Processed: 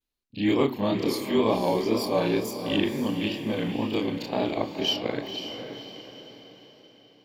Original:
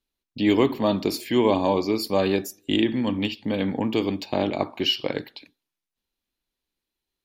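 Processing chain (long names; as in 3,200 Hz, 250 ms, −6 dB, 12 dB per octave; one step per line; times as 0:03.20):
every overlapping window played backwards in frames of 75 ms
tape wow and flutter 80 cents
on a send: feedback delay with all-pass diffusion 521 ms, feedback 44%, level −7.5 dB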